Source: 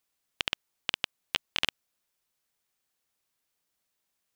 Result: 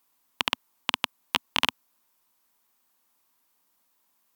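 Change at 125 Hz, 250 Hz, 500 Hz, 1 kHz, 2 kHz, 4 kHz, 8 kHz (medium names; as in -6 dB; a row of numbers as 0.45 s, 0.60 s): +0.5 dB, +8.5 dB, +4.5 dB, +11.0 dB, +4.0 dB, +4.0 dB, +4.5 dB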